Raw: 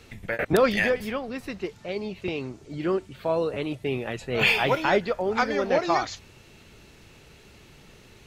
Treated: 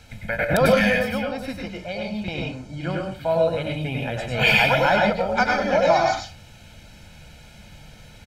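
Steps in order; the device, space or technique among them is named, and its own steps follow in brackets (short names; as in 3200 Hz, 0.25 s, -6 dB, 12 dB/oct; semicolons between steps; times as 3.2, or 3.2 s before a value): microphone above a desk (comb 1.3 ms, depth 82%; reverb RT60 0.35 s, pre-delay 91 ms, DRR -0.5 dB)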